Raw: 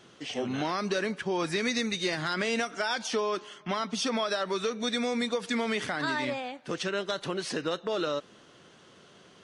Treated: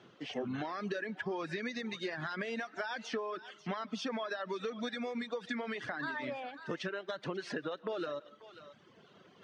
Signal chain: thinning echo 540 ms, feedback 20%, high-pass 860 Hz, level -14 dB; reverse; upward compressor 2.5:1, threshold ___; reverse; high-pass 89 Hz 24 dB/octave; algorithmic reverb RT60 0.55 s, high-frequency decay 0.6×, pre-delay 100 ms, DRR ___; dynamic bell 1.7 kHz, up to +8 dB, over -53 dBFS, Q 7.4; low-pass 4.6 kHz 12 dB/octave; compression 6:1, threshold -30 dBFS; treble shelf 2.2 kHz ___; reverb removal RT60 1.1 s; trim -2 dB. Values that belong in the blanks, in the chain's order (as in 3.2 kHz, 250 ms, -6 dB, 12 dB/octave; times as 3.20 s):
-50 dBFS, 15.5 dB, -5.5 dB